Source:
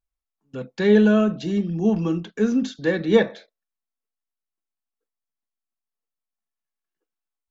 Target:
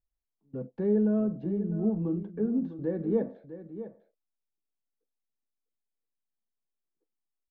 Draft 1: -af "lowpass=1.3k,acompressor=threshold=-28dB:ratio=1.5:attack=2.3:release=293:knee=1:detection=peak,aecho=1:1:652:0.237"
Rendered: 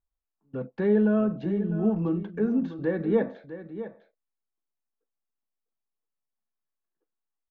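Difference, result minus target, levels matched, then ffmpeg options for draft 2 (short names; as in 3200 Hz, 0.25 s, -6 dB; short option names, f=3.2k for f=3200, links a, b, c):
1000 Hz band +6.5 dB; compressor: peak gain reduction -2.5 dB
-af "lowpass=580,acompressor=threshold=-37dB:ratio=1.5:attack=2.3:release=293:knee=1:detection=peak,aecho=1:1:652:0.237"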